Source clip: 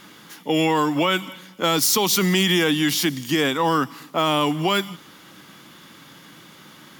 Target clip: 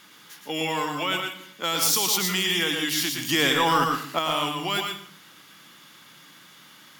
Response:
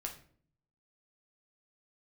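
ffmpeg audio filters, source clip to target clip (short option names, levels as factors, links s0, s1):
-filter_complex "[0:a]tiltshelf=f=840:g=-5,asettb=1/sr,asplit=3[s0][s1][s2];[s0]atrim=end=3.184[s3];[s1]atrim=start=3.18:end=4.19,asetpts=PTS-STARTPTS,afade=t=in:d=0.004:c=qsin,afade=t=out:st=1.006:d=0.004:c=qsin,acontrast=70[s4];[s2]atrim=start=4.186[s5];[s3][s4]acrossfade=d=0.004:c1=hsin:c2=qsin[s6];[s6][s5]acrossfade=d=0.004:c1=qsin:c2=hsin,asplit=2[s7][s8];[1:a]atrim=start_sample=2205,adelay=114[s9];[s8][s9]afir=irnorm=-1:irlink=0,volume=0.794[s10];[s7][s10]amix=inputs=2:normalize=0,volume=0.398"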